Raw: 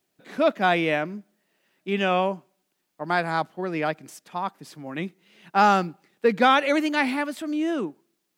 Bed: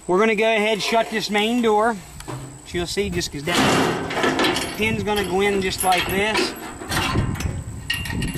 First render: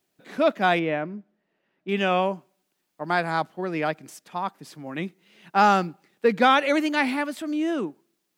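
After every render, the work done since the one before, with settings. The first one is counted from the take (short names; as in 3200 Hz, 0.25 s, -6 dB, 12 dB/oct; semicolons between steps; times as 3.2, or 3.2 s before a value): 0.79–1.89 tape spacing loss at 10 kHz 28 dB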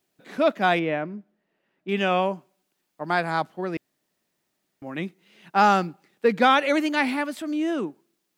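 3.77–4.82 room tone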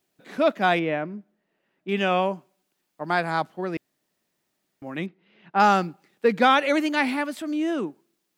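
5.06–5.6 air absorption 300 m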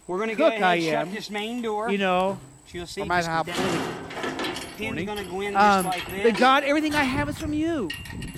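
add bed -10 dB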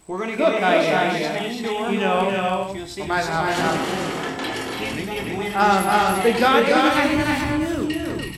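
doubler 26 ms -7 dB; tapped delay 98/290/333/428 ms -10.5/-5/-4.5/-7.5 dB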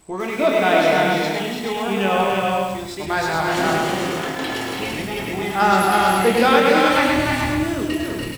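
echo 0.132 s -12 dB; lo-fi delay 0.106 s, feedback 35%, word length 6-bit, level -5 dB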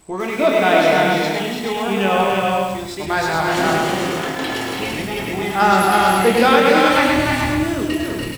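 gain +2 dB; limiter -1 dBFS, peak gain reduction 1.5 dB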